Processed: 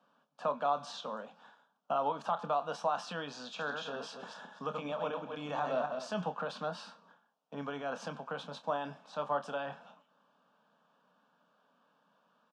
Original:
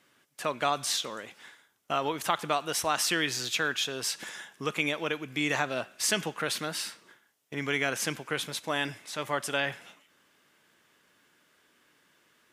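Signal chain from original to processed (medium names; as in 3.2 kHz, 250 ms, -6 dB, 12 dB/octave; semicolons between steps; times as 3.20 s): 3.45–6.08 s: backward echo that repeats 127 ms, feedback 43%, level -6 dB; steep high-pass 170 Hz 48 dB/octave; peak limiter -20.5 dBFS, peak gain reduction 8 dB; tape spacing loss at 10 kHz 39 dB; static phaser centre 850 Hz, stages 4; doubling 28 ms -10.5 dB; trim +5.5 dB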